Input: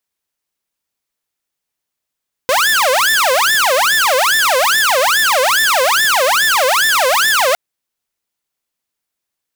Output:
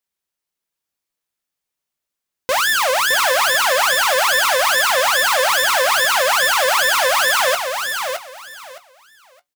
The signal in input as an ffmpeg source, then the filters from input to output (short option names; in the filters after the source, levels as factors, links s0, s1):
-f lavfi -i "aevalsrc='0.398*(2*mod((1142*t-638/(2*PI*2.4)*sin(2*PI*2.4*t)),1)-1)':d=5.06:s=44100"
-filter_complex "[0:a]flanger=delay=5:depth=1.3:regen=-76:speed=0.47:shape=triangular,asplit=2[s0][s1];[s1]adelay=17,volume=0.237[s2];[s0][s2]amix=inputs=2:normalize=0,asplit=2[s3][s4];[s4]aecho=0:1:615|1230|1845:0.501|0.105|0.0221[s5];[s3][s5]amix=inputs=2:normalize=0"